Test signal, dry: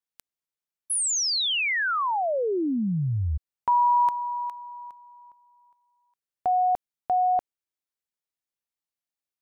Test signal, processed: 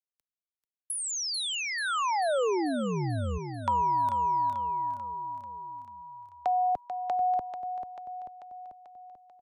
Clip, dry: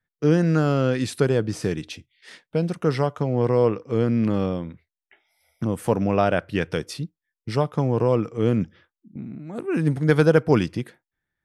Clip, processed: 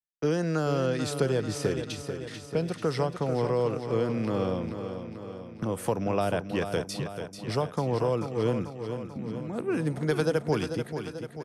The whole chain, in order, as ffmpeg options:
-filter_complex "[0:a]agate=range=-26dB:threshold=-49dB:ratio=16:release=73:detection=peak,acrossover=split=90|420|1400|3300[a][b][c][d][e];[a]acompressor=threshold=-42dB:ratio=4[f];[b]acompressor=threshold=-33dB:ratio=4[g];[c]acompressor=threshold=-27dB:ratio=4[h];[d]acompressor=threshold=-48dB:ratio=4[i];[e]acompressor=threshold=-34dB:ratio=4[j];[f][g][h][i][j]amix=inputs=5:normalize=0,asplit=2[k][l];[l]aecho=0:1:440|880|1320|1760|2200|2640|3080:0.376|0.222|0.131|0.0772|0.0455|0.0269|0.0159[m];[k][m]amix=inputs=2:normalize=0"

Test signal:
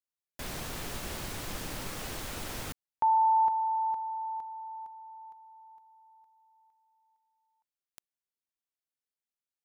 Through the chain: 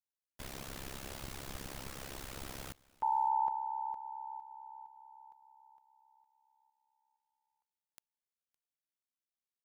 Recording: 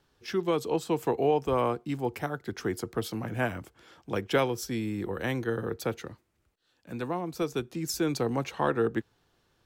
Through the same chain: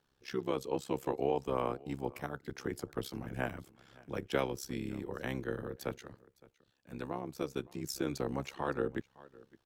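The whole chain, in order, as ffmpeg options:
-af "aecho=1:1:562:0.0708,tremolo=f=67:d=0.889,volume=-3.5dB"

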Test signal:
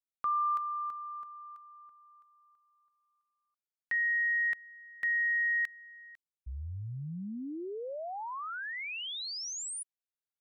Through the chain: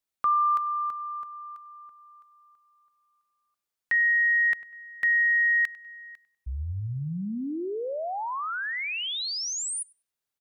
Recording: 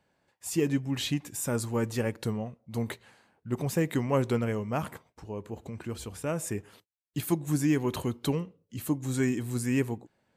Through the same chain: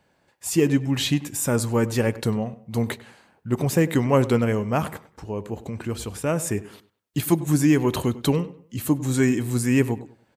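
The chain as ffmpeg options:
-filter_complex "[0:a]asplit=2[a][b];[b]adelay=98,lowpass=f=3.4k:p=1,volume=-18dB,asplit=2[c][d];[d]adelay=98,lowpass=f=3.4k:p=1,volume=0.34,asplit=2[e][f];[f]adelay=98,lowpass=f=3.4k:p=1,volume=0.34[g];[a][c][e][g]amix=inputs=4:normalize=0,volume=7.5dB"

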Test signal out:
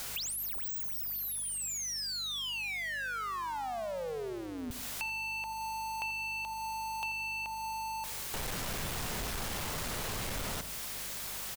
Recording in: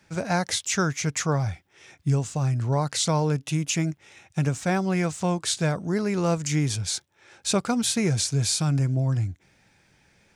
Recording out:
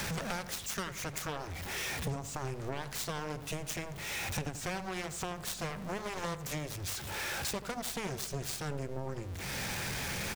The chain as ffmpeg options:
-filter_complex "[0:a]aeval=exprs='val(0)+0.5*0.0224*sgn(val(0))':c=same,aeval=exprs='0.282*(cos(1*acos(clip(val(0)/0.282,-1,1)))-cos(1*PI/2))+0.00398*(cos(3*acos(clip(val(0)/0.282,-1,1)))-cos(3*PI/2))+0.0891*(cos(7*acos(clip(val(0)/0.282,-1,1)))-cos(7*PI/2))':c=same,acompressor=threshold=-38dB:ratio=4,aeval=exprs='val(0)+0.00158*(sin(2*PI*50*n/s)+sin(2*PI*2*50*n/s)/2+sin(2*PI*3*50*n/s)/3+sin(2*PI*4*50*n/s)/4+sin(2*PI*5*50*n/s)/5)':c=same,equalizer=f=310:w=3.6:g=-5.5,asplit=2[a][b];[b]adelay=85,lowpass=f=1.5k:p=1,volume=-11.5dB,asplit=2[c][d];[d]adelay=85,lowpass=f=1.5k:p=1,volume=0.49,asplit=2[e][f];[f]adelay=85,lowpass=f=1.5k:p=1,volume=0.49,asplit=2[g][h];[h]adelay=85,lowpass=f=1.5k:p=1,volume=0.49,asplit=2[i][j];[j]adelay=85,lowpass=f=1.5k:p=1,volume=0.49[k];[a][c][e][g][i][k]amix=inputs=6:normalize=0,volume=1.5dB"

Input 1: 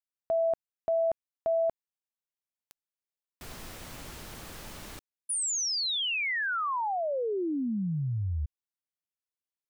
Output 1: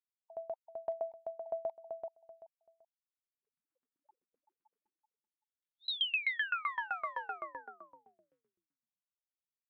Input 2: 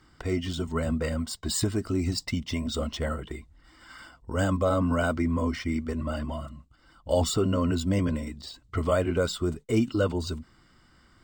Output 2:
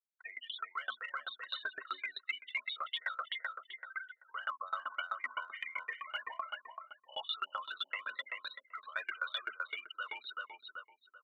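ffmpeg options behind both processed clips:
-filter_complex "[0:a]afftfilt=real='re*gte(hypot(re,im),0.0224)':imag='im*gte(hypot(re,im),0.0224)':win_size=1024:overlap=0.75,asplit=2[a][b];[b]adelay=383,lowpass=f=2.2k:p=1,volume=-8.5dB,asplit=2[c][d];[d]adelay=383,lowpass=f=2.2k:p=1,volume=0.24,asplit=2[e][f];[f]adelay=383,lowpass=f=2.2k:p=1,volume=0.24[g];[a][c][e][g]amix=inputs=4:normalize=0,dynaudnorm=f=110:g=11:m=12dB,aresample=8000,aresample=44100,highpass=f=1.3k:w=0.5412,highpass=f=1.3k:w=1.3066,areverse,acompressor=threshold=-39dB:ratio=5:attack=0.16:release=124:knee=6:detection=rms,areverse,aeval=exprs='val(0)*pow(10,-26*if(lt(mod(7.8*n/s,1),2*abs(7.8)/1000),1-mod(7.8*n/s,1)/(2*abs(7.8)/1000),(mod(7.8*n/s,1)-2*abs(7.8)/1000)/(1-2*abs(7.8)/1000))/20)':c=same,volume=11dB"

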